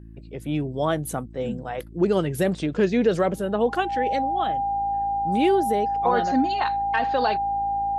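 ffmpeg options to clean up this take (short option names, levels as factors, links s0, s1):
-af "bandreject=f=55:t=h:w=4,bandreject=f=110:t=h:w=4,bandreject=f=165:t=h:w=4,bandreject=f=220:t=h:w=4,bandreject=f=275:t=h:w=4,bandreject=f=330:t=h:w=4,bandreject=f=800:w=30"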